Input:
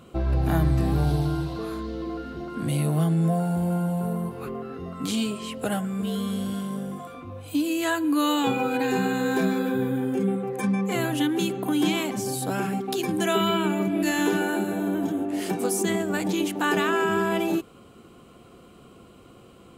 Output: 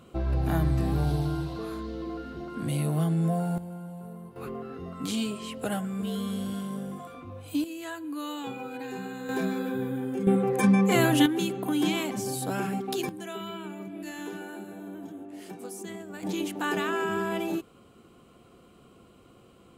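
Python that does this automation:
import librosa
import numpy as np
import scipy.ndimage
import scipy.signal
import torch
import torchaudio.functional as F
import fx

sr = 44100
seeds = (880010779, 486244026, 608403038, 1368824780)

y = fx.gain(x, sr, db=fx.steps((0.0, -3.5), (3.58, -14.5), (4.36, -3.5), (7.64, -12.5), (9.29, -5.5), (10.27, 4.0), (11.26, -3.0), (13.09, -14.5), (16.23, -5.5)))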